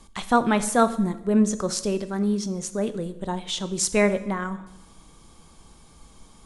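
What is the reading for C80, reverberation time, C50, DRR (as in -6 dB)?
16.5 dB, 0.90 s, 14.5 dB, 11.5 dB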